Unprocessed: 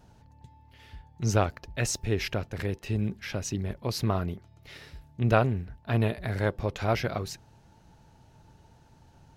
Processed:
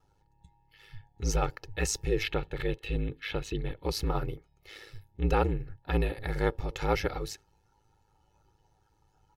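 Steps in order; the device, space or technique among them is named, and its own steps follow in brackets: spectral noise reduction 11 dB; 2.23–3.82 resonant high shelf 4500 Hz -6.5 dB, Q 3; ring-modulated robot voice (ring modulator 53 Hz; comb 2.3 ms, depth 76%)

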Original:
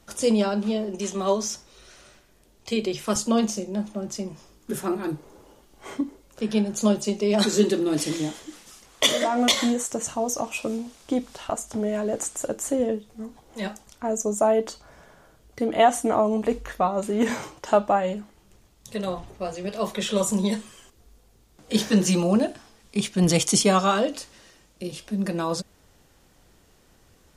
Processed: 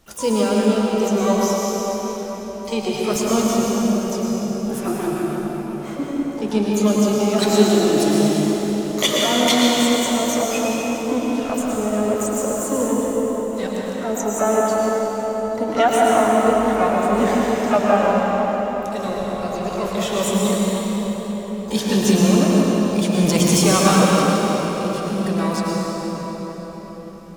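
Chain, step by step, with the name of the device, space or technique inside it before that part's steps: shimmer-style reverb (harmoniser +12 st -11 dB; reverb RT60 5.2 s, pre-delay 98 ms, DRR -4 dB)

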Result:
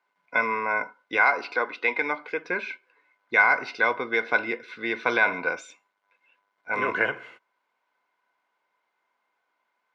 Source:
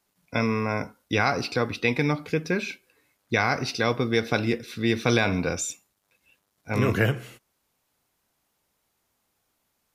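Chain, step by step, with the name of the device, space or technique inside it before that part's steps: 1.17–2.5 HPF 250 Hz 12 dB/oct; tin-can telephone (BPF 480–2500 Hz; small resonant body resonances 1000/1500/2100 Hz, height 13 dB, ringing for 45 ms)

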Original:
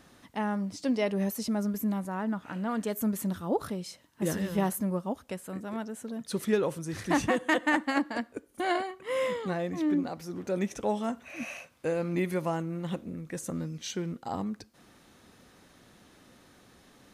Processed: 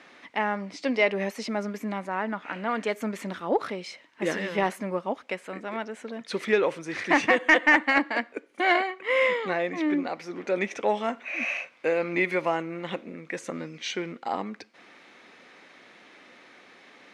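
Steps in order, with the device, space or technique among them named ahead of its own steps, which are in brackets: intercom (BPF 350–4400 Hz; bell 2200 Hz +10 dB 0.54 oct; soft clip -12.5 dBFS, distortion -23 dB); gain +6 dB

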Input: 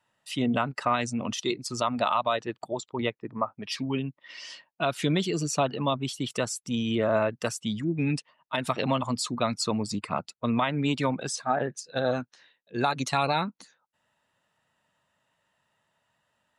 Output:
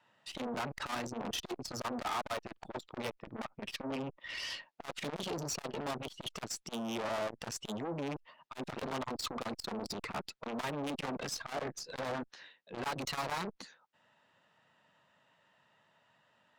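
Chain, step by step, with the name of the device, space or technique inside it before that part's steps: valve radio (BPF 120–4900 Hz; tube stage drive 37 dB, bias 0.4; core saturation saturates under 600 Hz); gain +6 dB

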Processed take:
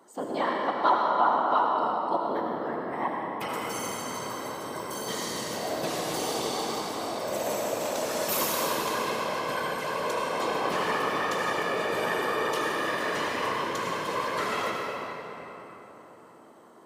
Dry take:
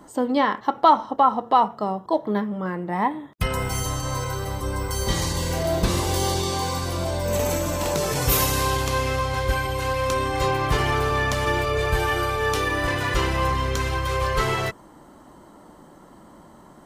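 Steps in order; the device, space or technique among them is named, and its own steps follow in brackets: whispering ghost (whisperiser; HPF 310 Hz 12 dB/oct; reverb RT60 3.9 s, pre-delay 72 ms, DRR -1.5 dB); gain -8 dB

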